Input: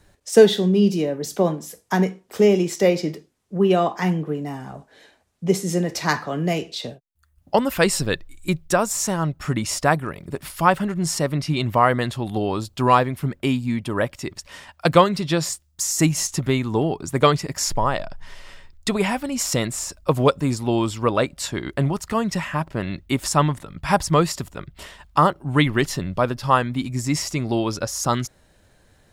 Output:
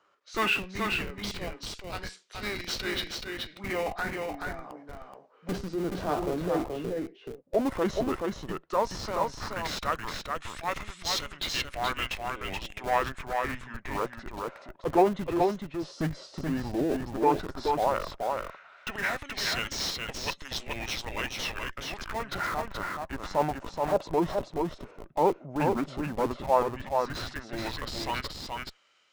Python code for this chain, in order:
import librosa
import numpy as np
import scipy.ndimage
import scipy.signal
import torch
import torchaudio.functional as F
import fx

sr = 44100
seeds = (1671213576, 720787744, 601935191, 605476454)

p1 = fx.highpass(x, sr, hz=290.0, slope=6)
p2 = fx.transient(p1, sr, attack_db=-6, sustain_db=4)
p3 = fx.filter_lfo_bandpass(p2, sr, shape='sine', hz=0.11, low_hz=540.0, high_hz=4100.0, q=1.1)
p4 = fx.schmitt(p3, sr, flips_db=-32.5)
p5 = p3 + F.gain(torch.from_numpy(p4), -5.0).numpy()
p6 = fx.formant_shift(p5, sr, semitones=-5)
p7 = p6 + fx.echo_single(p6, sr, ms=427, db=-4.0, dry=0)
y = F.gain(torch.from_numpy(p7), -1.5).numpy()